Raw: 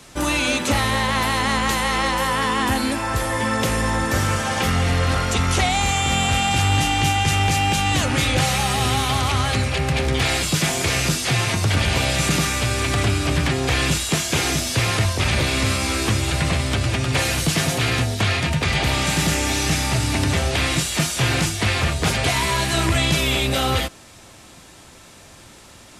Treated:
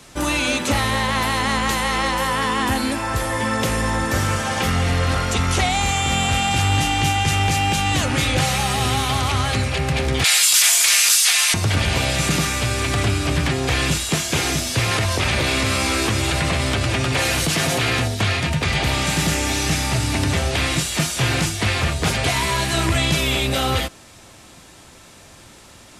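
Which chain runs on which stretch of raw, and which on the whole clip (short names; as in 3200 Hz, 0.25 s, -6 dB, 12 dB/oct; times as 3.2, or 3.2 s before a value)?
10.24–11.54 HPF 1000 Hz + tilt +4 dB/oct
14.91–18.08 tone controls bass -4 dB, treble -2 dB + fast leveller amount 70%
whole clip: dry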